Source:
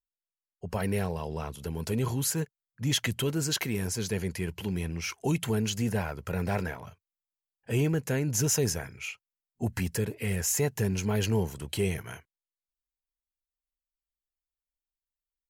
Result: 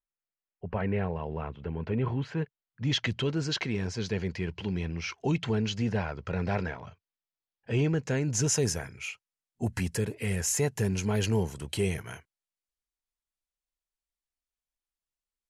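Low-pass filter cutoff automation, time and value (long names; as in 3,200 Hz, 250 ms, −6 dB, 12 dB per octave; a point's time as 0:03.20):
low-pass filter 24 dB per octave
0:02.11 2,600 Hz
0:03.00 5,200 Hz
0:07.75 5,200 Hz
0:08.75 11,000 Hz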